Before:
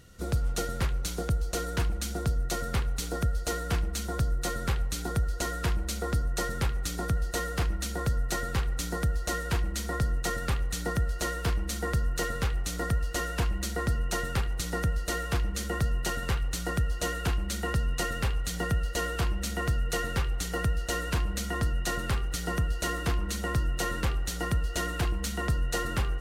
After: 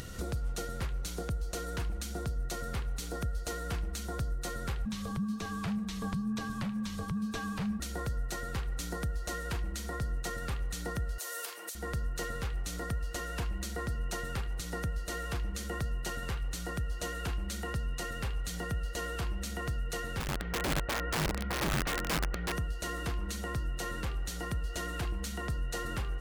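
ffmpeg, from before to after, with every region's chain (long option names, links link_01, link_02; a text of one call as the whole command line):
ffmpeg -i in.wav -filter_complex "[0:a]asettb=1/sr,asplit=3[link_01][link_02][link_03];[link_01]atrim=end=4.854[link_04];[link_02]atrim=start=4.85:end=7.8,asetpts=PTS-STARTPTS,afade=type=in:duration=0.004:curve=qsin,afade=type=out:start_time=2.946:duration=0.004:curve=qsin,acrossover=split=5300[link_05][link_06];[link_06]acompressor=threshold=-48dB:ratio=4:attack=1:release=60[link_07];[link_05][link_07]amix=inputs=2:normalize=0,afreqshift=-260[link_08];[link_03]atrim=start=7.796[link_09];[link_04][link_08]acrossfade=duration=0.004:curve1=hsin:curve2=qsin[link_10];[link_10][link_09]acrossfade=duration=0.004:curve1=qsin:curve2=hsin,asettb=1/sr,asplit=3[link_11][link_12][link_13];[link_11]atrim=end=11.184[link_14];[link_12]atrim=start=11.18:end=11.75,asetpts=PTS-STARTPTS,afade=type=in:duration=0.004:curve=qsin,afade=type=out:start_time=0.566:duration=0.004:curve=qsin,highpass=frequency=430:width=0.5412,highpass=frequency=430:width=1.3066,aemphasis=mode=production:type=75kf,acompressor=threshold=-29dB:ratio=2.5:attack=3.2:release=140:knee=1:detection=peak[link_15];[link_13]atrim=start=11.746[link_16];[link_14][link_15]acrossfade=duration=0.004:curve1=hsin:curve2=qsin[link_17];[link_17][link_16]acrossfade=duration=0.004:curve1=qsin:curve2=hsin,asettb=1/sr,asplit=3[link_18][link_19][link_20];[link_18]atrim=end=20.204[link_21];[link_19]atrim=start=20.2:end=22.52,asetpts=PTS-STARTPTS,afade=type=in:duration=0.004:curve=qsin,afade=type=out:start_time=2.316:duration=0.004:curve=qsin,lowpass=frequency=2200:width=0.5412,lowpass=frequency=2200:width=1.3066,aeval=exprs='(mod(16.8*val(0)+1,2)-1)/16.8':channel_layout=same[link_22];[link_20]atrim=start=22.516[link_23];[link_21][link_22]acrossfade=duration=0.004:curve1=hsin:curve2=qsin[link_24];[link_24][link_23]acrossfade=duration=0.004:curve1=qsin:curve2=hsin,acompressor=mode=upward:threshold=-28dB:ratio=2.5,alimiter=level_in=0.5dB:limit=-24dB:level=0:latency=1:release=380,volume=-0.5dB,volume=-1.5dB" out.wav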